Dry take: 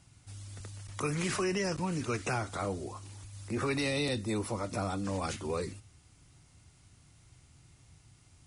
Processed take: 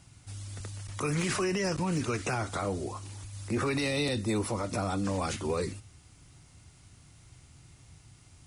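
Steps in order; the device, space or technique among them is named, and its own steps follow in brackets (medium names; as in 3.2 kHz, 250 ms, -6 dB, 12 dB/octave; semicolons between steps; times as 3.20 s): limiter into clipper (peak limiter -25.5 dBFS, peak gain reduction 5 dB; hard clipper -26.5 dBFS, distortion -35 dB); trim +4.5 dB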